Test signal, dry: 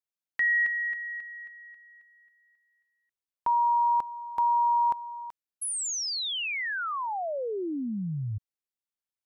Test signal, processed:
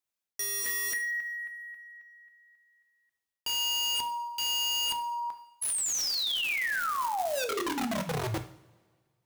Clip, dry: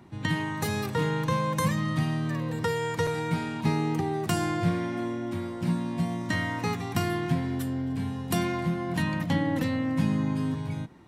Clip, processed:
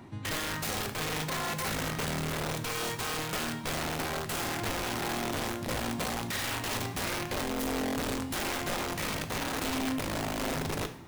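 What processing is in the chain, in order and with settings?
hum notches 60/120/180/240/300/360/420/480 Hz; dynamic bell 120 Hz, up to +5 dB, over -48 dBFS, Q 7; reverse; compression 16:1, threshold -33 dBFS; reverse; integer overflow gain 32 dB; two-slope reverb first 0.54 s, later 1.8 s, from -18 dB, DRR 7 dB; trim +4 dB

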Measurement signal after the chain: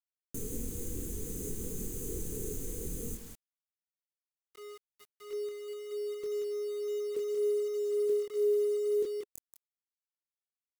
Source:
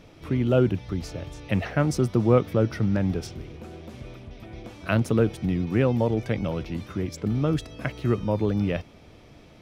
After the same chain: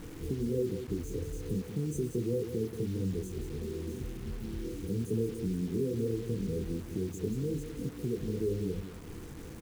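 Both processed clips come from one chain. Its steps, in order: FFT band-reject 510–6000 Hz; chorus voices 4, 0.24 Hz, delay 24 ms, depth 3.2 ms; in parallel at +0.5 dB: peak limiter -22.5 dBFS; on the sum: compression 3:1, threshold -41 dBFS; on a send: delay 182 ms -9.5 dB; on the sum: bit crusher 9-bit; dynamic bell 420 Hz, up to +6 dB, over -53 dBFS, Q 3.1; trim +3.5 dB

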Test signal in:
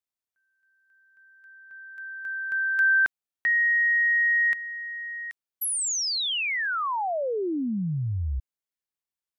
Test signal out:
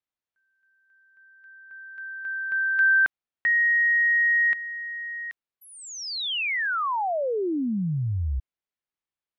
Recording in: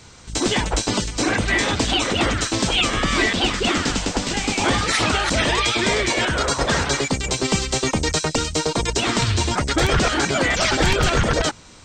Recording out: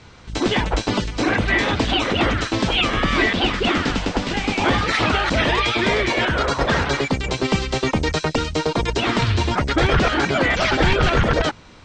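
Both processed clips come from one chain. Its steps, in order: low-pass 3.5 kHz 12 dB/octave; trim +1.5 dB

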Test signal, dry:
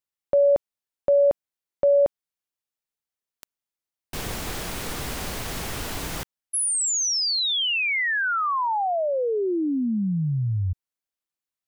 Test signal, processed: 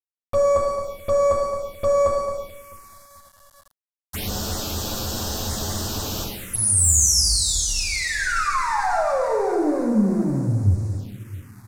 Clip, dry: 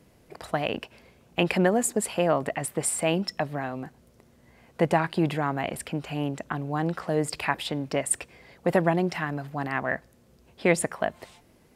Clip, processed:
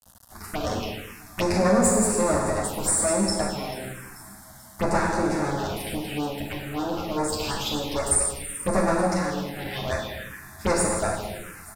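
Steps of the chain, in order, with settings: comb filter that takes the minimum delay 9.4 ms; on a send: echo whose repeats swap between lows and highs 219 ms, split 1.3 kHz, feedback 65%, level -11 dB; on the sum: gated-style reverb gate 440 ms falling, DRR -2 dB; in parallel at -9 dB: hard clipper -25.5 dBFS; on the sum: bit crusher 8-bit; touch-sensitive phaser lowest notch 370 Hz, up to 3.1 kHz, full sweep at -21 dBFS; treble shelf 6.7 kHz +8.5 dB; resampled via 32 kHz

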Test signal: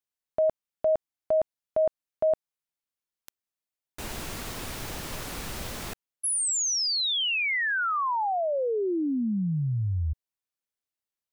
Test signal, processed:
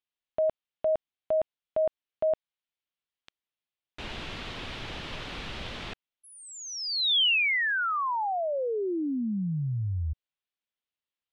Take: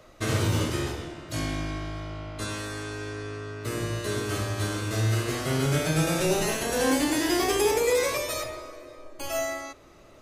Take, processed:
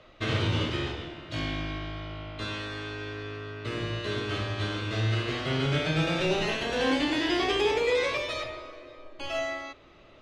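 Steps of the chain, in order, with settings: resonant low-pass 3.3 kHz, resonance Q 2.1; trim -2.5 dB

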